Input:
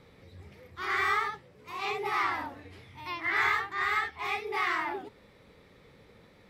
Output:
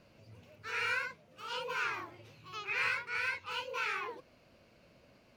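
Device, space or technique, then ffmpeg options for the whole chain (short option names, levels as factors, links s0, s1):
nightcore: -af "asetrate=53361,aresample=44100,volume=0.501"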